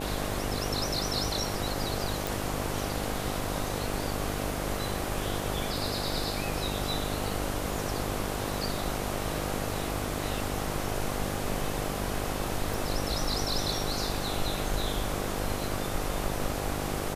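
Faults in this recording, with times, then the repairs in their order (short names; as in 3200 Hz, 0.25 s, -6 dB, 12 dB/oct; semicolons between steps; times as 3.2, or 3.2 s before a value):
buzz 50 Hz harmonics 16 -35 dBFS
2.27 pop
12.74 pop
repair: de-click; de-hum 50 Hz, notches 16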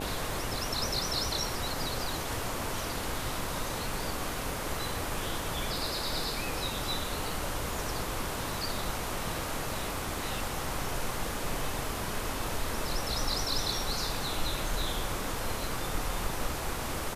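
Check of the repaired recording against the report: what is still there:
none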